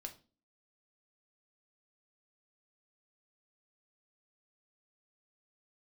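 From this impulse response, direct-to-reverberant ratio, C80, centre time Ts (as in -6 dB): 3.5 dB, 20.5 dB, 9 ms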